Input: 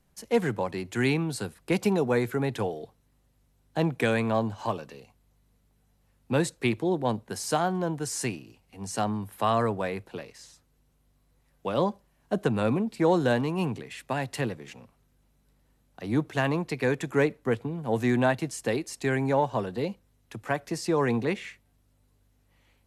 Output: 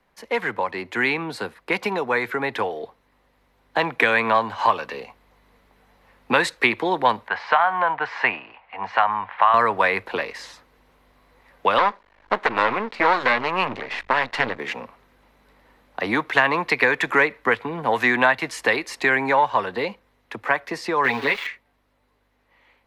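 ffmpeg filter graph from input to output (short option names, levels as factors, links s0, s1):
-filter_complex "[0:a]asettb=1/sr,asplit=3[s0][s1][s2];[s0]atrim=end=7.284[s3];[s1]atrim=start=7.28:end=9.54,asetpts=PTS-STARTPTS,afade=t=in:d=0.004:c=qsin,afade=t=out:st=2.256:d=0.004:c=qsin,lowpass=f=2900:w=0.5412,lowpass=f=2900:w=1.3066,lowshelf=f=530:t=q:w=1.5:g=-12,acompressor=threshold=0.0316:ratio=1.5:attack=3.2:release=140:knee=1:detection=peak[s4];[s2]atrim=start=9.536[s5];[s3][s4]acrossfade=d=0.004:c1=hsin:c2=qsin[s6];[s6][s5]acrossfade=d=0.004:c1=qsin:c2=hsin,asettb=1/sr,asplit=3[s7][s8][s9];[s7]atrim=end=11.784[s10];[s8]atrim=start=11.78:end=14.59,asetpts=PTS-STARTPTS,afade=t=in:d=0.004:c=qsin,afade=t=out:st=2.806:d=0.004:c=qsin,asubboost=boost=8:cutoff=100,aeval=exprs='max(val(0),0)':c=same,lowpass=6300[s11];[s9]atrim=start=14.586[s12];[s10][s11]acrossfade=d=0.004:c1=hsin:c2=qsin[s13];[s13][s12]acrossfade=d=0.004:c1=qsin:c2=hsin,asettb=1/sr,asplit=3[s14][s15][s16];[s14]atrim=end=21.044[s17];[s15]atrim=start=21.04:end=21.47,asetpts=PTS-STARTPTS,afade=t=in:d=0.004:c=qsin,afade=t=out:st=0.426:d=0.004:c=qsin,aeval=exprs='val(0)*gte(abs(val(0)),0.0126)':c=same,equalizer=f=3600:t=o:w=0.8:g=5.5,aecho=1:1:7.2:0.97,atrim=end_sample=18963[s18];[s16]atrim=start=21.466[s19];[s17][s18]acrossfade=d=0.004:c1=hsin:c2=qsin[s20];[s20][s19]acrossfade=d=0.004:c1=qsin:c2=hsin,dynaudnorm=f=370:g=21:m=3.76,equalizer=f=125:t=o:w=1:g=-6,equalizer=f=250:t=o:w=1:g=4,equalizer=f=500:t=o:w=1:g=8,equalizer=f=1000:t=o:w=1:g=12,equalizer=f=2000:t=o:w=1:g=12,equalizer=f=4000:t=o:w=1:g=6,equalizer=f=8000:t=o:w=1:g=-6,acrossover=split=120|1000[s21][s22][s23];[s21]acompressor=threshold=0.00891:ratio=4[s24];[s22]acompressor=threshold=0.0794:ratio=4[s25];[s23]acompressor=threshold=0.251:ratio=4[s26];[s24][s25][s26]amix=inputs=3:normalize=0,volume=0.668"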